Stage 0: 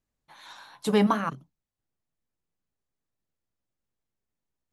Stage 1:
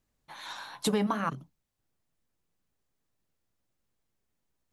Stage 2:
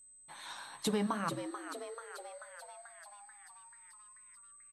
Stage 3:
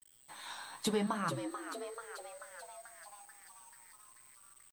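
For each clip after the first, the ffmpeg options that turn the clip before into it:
-af "acompressor=threshold=-30dB:ratio=12,volume=5.5dB"
-filter_complex "[0:a]aeval=exprs='val(0)+0.00282*sin(2*PI*8200*n/s)':c=same,asplit=2[a][b];[b]asplit=8[c][d][e][f][g][h][i][j];[c]adelay=437,afreqshift=120,volume=-9dB[k];[d]adelay=874,afreqshift=240,volume=-13dB[l];[e]adelay=1311,afreqshift=360,volume=-17dB[m];[f]adelay=1748,afreqshift=480,volume=-21dB[n];[g]adelay=2185,afreqshift=600,volume=-25.1dB[o];[h]adelay=2622,afreqshift=720,volume=-29.1dB[p];[i]adelay=3059,afreqshift=840,volume=-33.1dB[q];[j]adelay=3496,afreqshift=960,volume=-37.1dB[r];[k][l][m][n][o][p][q][r]amix=inputs=8:normalize=0[s];[a][s]amix=inputs=2:normalize=0,volume=-5dB"
-af "flanger=delay=5.7:depth=6.3:regen=54:speed=0.88:shape=sinusoidal,aeval=exprs='val(0)*gte(abs(val(0)),0.00106)':c=same,volume=4.5dB"

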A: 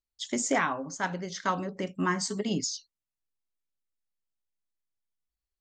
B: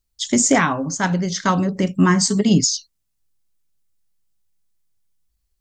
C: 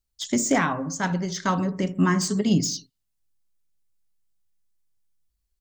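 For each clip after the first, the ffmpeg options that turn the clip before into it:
-af "bass=f=250:g=11,treble=f=4k:g=6,volume=8.5dB"
-filter_complex "[0:a]acrossover=split=1800[a][b];[a]aecho=1:1:64|128|192|256:0.224|0.0985|0.0433|0.0191[c];[b]asoftclip=type=tanh:threshold=-17dB[d];[c][d]amix=inputs=2:normalize=0,volume=-5.5dB"

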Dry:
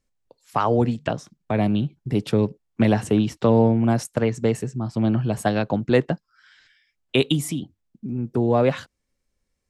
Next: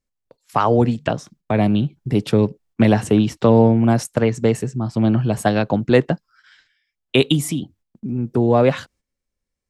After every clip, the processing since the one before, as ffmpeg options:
-af "agate=range=-10dB:threshold=-54dB:ratio=16:detection=peak,volume=4dB"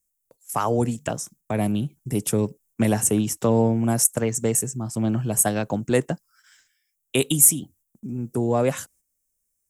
-af "aexciter=amount=9.4:drive=7.9:freq=6.3k,volume=-6.5dB"

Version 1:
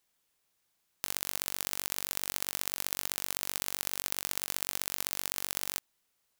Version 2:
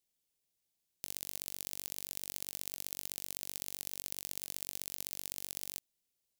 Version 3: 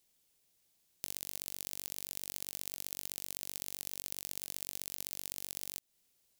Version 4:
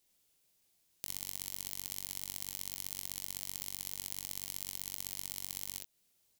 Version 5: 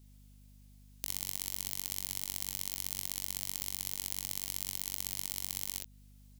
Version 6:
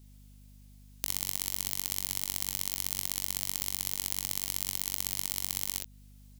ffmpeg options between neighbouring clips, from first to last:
-af "equalizer=f=1.3k:t=o:w=1.4:g=-14,volume=-6dB"
-af "acompressor=threshold=-44dB:ratio=4,volume=9.5dB"
-af "aecho=1:1:22|41|52|62:0.335|0.335|0.237|0.562,volume=-1.5dB"
-af "aeval=exprs='val(0)+0.001*(sin(2*PI*50*n/s)+sin(2*PI*2*50*n/s)/2+sin(2*PI*3*50*n/s)/3+sin(2*PI*4*50*n/s)/4+sin(2*PI*5*50*n/s)/5)':c=same,volume=3.5dB"
-af "aeval=exprs='0.473*(cos(1*acos(clip(val(0)/0.473,-1,1)))-cos(1*PI/2))+0.0596*(cos(2*acos(clip(val(0)/0.473,-1,1)))-cos(2*PI/2))':c=same,volume=3.5dB"

